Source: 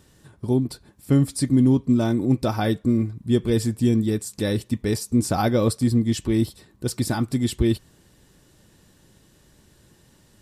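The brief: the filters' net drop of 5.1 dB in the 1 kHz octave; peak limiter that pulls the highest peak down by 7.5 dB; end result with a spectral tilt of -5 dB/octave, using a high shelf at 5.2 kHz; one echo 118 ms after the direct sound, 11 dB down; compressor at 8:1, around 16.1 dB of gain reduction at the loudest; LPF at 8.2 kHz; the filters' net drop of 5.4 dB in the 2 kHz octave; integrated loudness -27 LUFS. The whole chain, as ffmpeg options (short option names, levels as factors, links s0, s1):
-af "lowpass=8200,equalizer=f=1000:t=o:g=-7,equalizer=f=2000:t=o:g=-5.5,highshelf=f=5200:g=8.5,acompressor=threshold=0.0282:ratio=8,alimiter=level_in=1.41:limit=0.0631:level=0:latency=1,volume=0.708,aecho=1:1:118:0.282,volume=3.35"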